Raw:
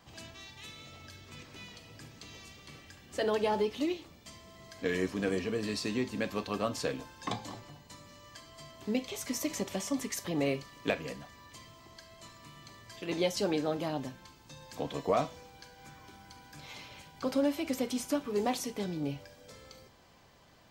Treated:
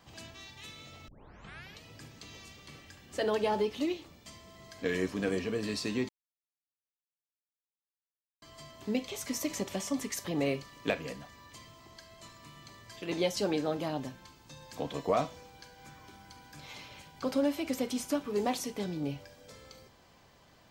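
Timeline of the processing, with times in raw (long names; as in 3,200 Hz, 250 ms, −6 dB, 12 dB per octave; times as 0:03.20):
0:01.08: tape start 0.75 s
0:06.09–0:08.42: silence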